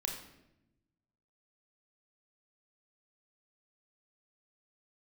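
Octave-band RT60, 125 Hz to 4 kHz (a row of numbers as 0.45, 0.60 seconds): 1.6, 1.4, 1.0, 0.75, 0.75, 0.65 seconds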